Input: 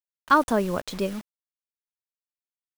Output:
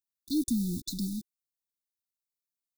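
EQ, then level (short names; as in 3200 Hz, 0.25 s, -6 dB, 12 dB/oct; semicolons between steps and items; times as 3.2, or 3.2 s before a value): brick-wall FIR band-stop 350–3500 Hz; high shelf 8200 Hz +7 dB; -1.5 dB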